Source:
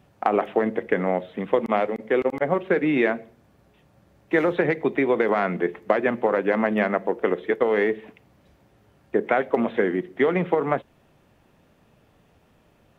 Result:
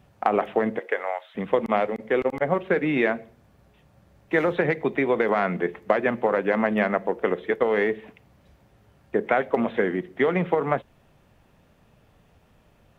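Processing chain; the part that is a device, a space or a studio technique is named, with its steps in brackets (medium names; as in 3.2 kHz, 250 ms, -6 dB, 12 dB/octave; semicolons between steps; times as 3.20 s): low shelf boost with a cut just above (bass shelf 74 Hz +7 dB; peaking EQ 320 Hz -3.5 dB 0.81 oct); 0.78–1.34 s: high-pass 320 Hz -> 1.1 kHz 24 dB/octave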